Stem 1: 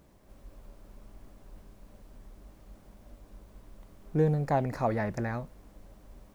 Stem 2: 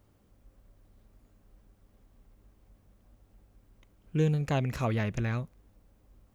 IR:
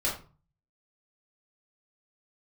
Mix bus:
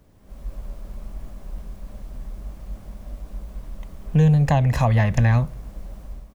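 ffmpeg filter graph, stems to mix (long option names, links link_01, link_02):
-filter_complex "[0:a]volume=-0.5dB[link_01];[1:a]adelay=1.3,volume=1dB,asplit=2[link_02][link_03];[link_03]volume=-23dB[link_04];[2:a]atrim=start_sample=2205[link_05];[link_04][link_05]afir=irnorm=-1:irlink=0[link_06];[link_01][link_02][link_06]amix=inputs=3:normalize=0,dynaudnorm=framelen=120:gausssize=5:maxgain=9.5dB,lowshelf=frequency=160:gain=6,acrossover=split=130[link_07][link_08];[link_08]acompressor=threshold=-20dB:ratio=3[link_09];[link_07][link_09]amix=inputs=2:normalize=0"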